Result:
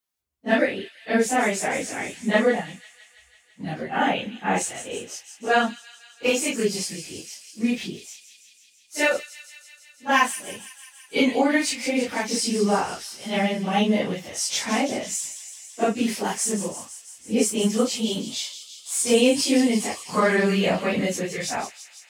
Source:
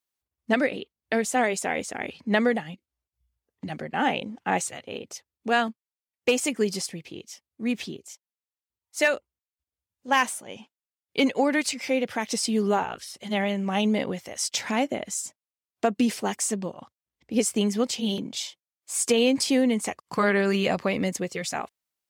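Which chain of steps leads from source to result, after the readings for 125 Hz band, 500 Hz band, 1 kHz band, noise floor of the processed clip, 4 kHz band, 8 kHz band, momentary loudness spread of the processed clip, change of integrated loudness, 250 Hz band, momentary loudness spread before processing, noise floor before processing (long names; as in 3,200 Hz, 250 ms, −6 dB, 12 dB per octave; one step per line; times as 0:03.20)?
+2.5 dB, +2.5 dB, +2.5 dB, −56 dBFS, +3.0 dB, +3.5 dB, 16 LU, +2.5 dB, +2.5 dB, 15 LU, below −85 dBFS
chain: random phases in long frames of 100 ms
delay with a high-pass on its return 166 ms, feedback 73%, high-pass 3,500 Hz, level −9.5 dB
level +2.5 dB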